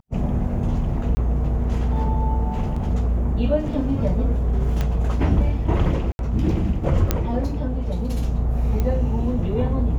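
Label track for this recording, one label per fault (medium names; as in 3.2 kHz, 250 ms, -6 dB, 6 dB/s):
1.150000	1.170000	dropout 20 ms
2.760000	2.760000	dropout 4.6 ms
4.810000	4.810000	pop -11 dBFS
6.120000	6.190000	dropout 71 ms
7.110000	7.110000	pop -4 dBFS
8.800000	8.800000	pop -12 dBFS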